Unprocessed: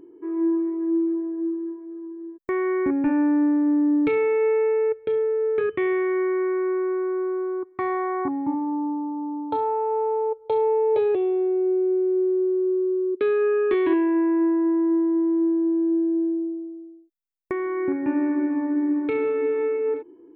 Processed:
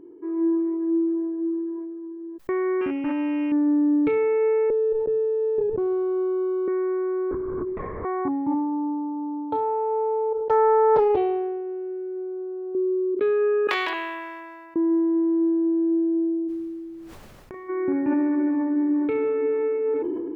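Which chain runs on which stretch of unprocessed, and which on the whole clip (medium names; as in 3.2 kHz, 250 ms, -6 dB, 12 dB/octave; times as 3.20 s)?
2.81–3.52 s: sorted samples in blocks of 16 samples + low-pass 2.2 kHz 24 dB/octave + bass shelf 440 Hz -7 dB
4.70–6.68 s: Chebyshev low-pass 1.1 kHz, order 10 + sliding maximum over 5 samples
7.31–8.05 s: compressor with a negative ratio -29 dBFS, ratio -0.5 + LPC vocoder at 8 kHz whisper
10.40–12.75 s: comb 6.6 ms, depth 84% + loudspeaker Doppler distortion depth 0.37 ms
13.67–14.76 s: high-pass 890 Hz 24 dB/octave + peaking EQ 1.2 kHz -8.5 dB 1.9 oct + spectrum-flattening compressor 2:1
16.47–17.68 s: doubling 34 ms -3 dB + compression 10:1, threshold -36 dBFS + added noise pink -65 dBFS
whole clip: treble shelf 2.5 kHz -10 dB; decay stretcher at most 23 dB/s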